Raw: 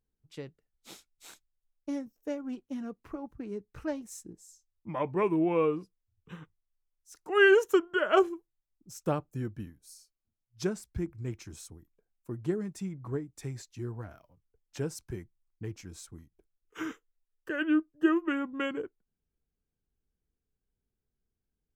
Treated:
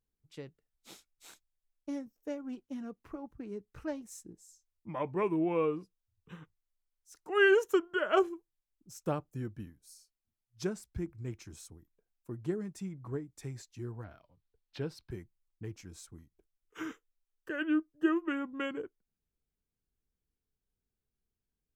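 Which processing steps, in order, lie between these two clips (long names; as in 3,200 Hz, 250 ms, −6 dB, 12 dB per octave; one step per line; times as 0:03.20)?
0:14.04–0:15.11: high shelf with overshoot 5,400 Hz −9 dB, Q 3
level −3.5 dB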